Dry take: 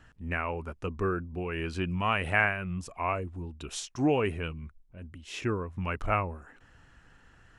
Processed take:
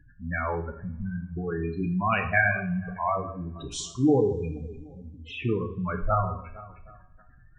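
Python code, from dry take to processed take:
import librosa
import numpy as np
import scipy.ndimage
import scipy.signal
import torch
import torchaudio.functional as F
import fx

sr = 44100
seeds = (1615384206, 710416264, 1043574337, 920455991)

p1 = fx.brickwall_bandstop(x, sr, low_hz=270.0, high_hz=1500.0, at=(0.7, 1.37))
p2 = p1 + fx.echo_alternate(p1, sr, ms=153, hz=1600.0, feedback_pct=63, wet_db=-11, dry=0)
p3 = fx.spec_gate(p2, sr, threshold_db=-10, keep='strong')
p4 = fx.rev_double_slope(p3, sr, seeds[0], early_s=0.48, late_s=2.1, knee_db=-26, drr_db=3.5)
y = F.gain(torch.from_numpy(p4), 3.5).numpy()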